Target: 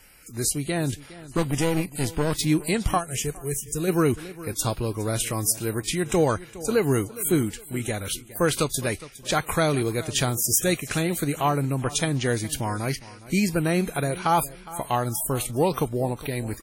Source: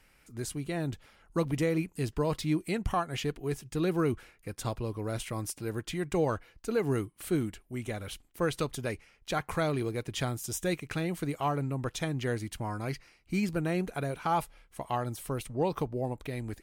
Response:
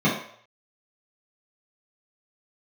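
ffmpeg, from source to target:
-filter_complex "[0:a]asettb=1/sr,asplit=3[a][b][c];[a]atrim=end=1.374[d];[b]atrim=start=1.37:end=2.36,asetpts=PTS-STARTPTS,afade=t=in:d=0.004:c=qsin,afade=t=out:st=0.986:d=0.004:c=qsin,aeval=exprs='clip(val(0),-1,0.0141)':c=same[e];[c]atrim=start=2.356[f];[d][e]acrossfade=d=0.004:c1=hsin:c2=qsin[g];[g][f]acrossfade=d=0.004:c1=qsin:c2=hsin,highshelf=f=5.7k:g=11.5,aecho=1:1:412|824|1236:0.133|0.0413|0.0128,acrusher=bits=7:mode=log:mix=0:aa=0.000001,asplit=3[h][i][j];[h]afade=t=out:st=2.97:d=0.02[k];[i]equalizer=f=250:t=o:w=1:g=-10,equalizer=f=1k:t=o:w=1:g=-10,equalizer=f=2k:t=o:w=1:g=-3,equalizer=f=4k:t=o:w=1:g=-10,equalizer=f=8k:t=o:w=1:g=6,afade=t=in:st=2.97:d=0.02,afade=t=out:st=3.87:d=0.02[l];[j]afade=t=in:st=3.87:d=0.02[m];[k][l][m]amix=inputs=3:normalize=0,volume=7dB" -ar 48000 -c:a wmav2 -b:a 32k

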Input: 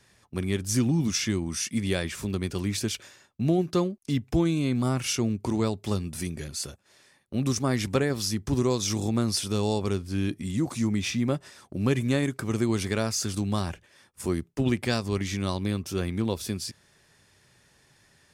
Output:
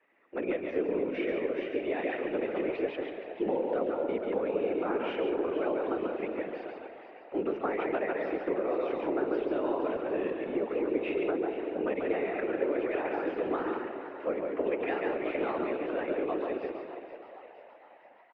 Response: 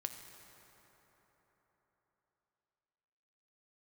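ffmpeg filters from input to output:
-filter_complex "[0:a]asplit=2[a][b];[1:a]atrim=start_sample=2205,asetrate=83790,aresample=44100,adelay=140[c];[b][c]afir=irnorm=-1:irlink=0,volume=3.5dB[d];[a][d]amix=inputs=2:normalize=0,dynaudnorm=f=100:g=5:m=5.5dB,highpass=f=170:t=q:w=0.5412,highpass=f=170:t=q:w=1.307,lowpass=f=2.4k:t=q:w=0.5176,lowpass=f=2.4k:t=q:w=0.7071,lowpass=f=2.4k:t=q:w=1.932,afreqshift=150,acompressor=threshold=-21dB:ratio=6,asplit=6[e][f][g][h][i][j];[f]adelay=468,afreqshift=80,volume=-12.5dB[k];[g]adelay=936,afreqshift=160,volume=-18.3dB[l];[h]adelay=1404,afreqshift=240,volume=-24.2dB[m];[i]adelay=1872,afreqshift=320,volume=-30dB[n];[j]adelay=2340,afreqshift=400,volume=-35.9dB[o];[e][k][l][m][n][o]amix=inputs=6:normalize=0,afftfilt=real='hypot(re,im)*cos(2*PI*random(0))':imag='hypot(re,im)*sin(2*PI*random(1))':win_size=512:overlap=0.75"

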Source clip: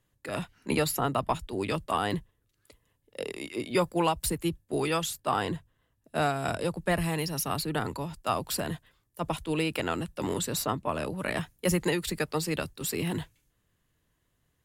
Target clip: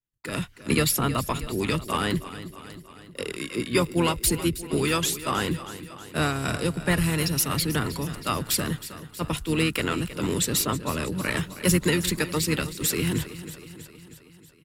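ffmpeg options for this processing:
-filter_complex "[0:a]equalizer=f=740:t=o:w=0.87:g=-13,agate=range=-33dB:threshold=-59dB:ratio=3:detection=peak,highshelf=f=6.3k:g=2.5,aecho=1:1:318|636|954|1272|1590|1908:0.2|0.12|0.0718|0.0431|0.0259|0.0155,asplit=3[a][b][c];[b]asetrate=22050,aresample=44100,atempo=2,volume=-13dB[d];[c]asetrate=33038,aresample=44100,atempo=1.33484,volume=-13dB[e];[a][d][e]amix=inputs=3:normalize=0,volume=6dB"

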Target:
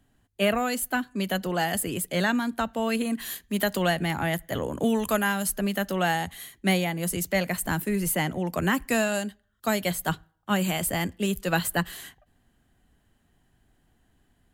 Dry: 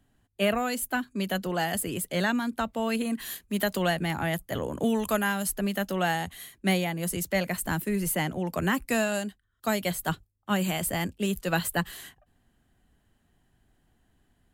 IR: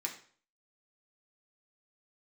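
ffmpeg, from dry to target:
-filter_complex "[0:a]asplit=2[a][b];[1:a]atrim=start_sample=2205,asetrate=39249,aresample=44100[c];[b][c]afir=irnorm=-1:irlink=0,volume=-22.5dB[d];[a][d]amix=inputs=2:normalize=0,volume=1.5dB"

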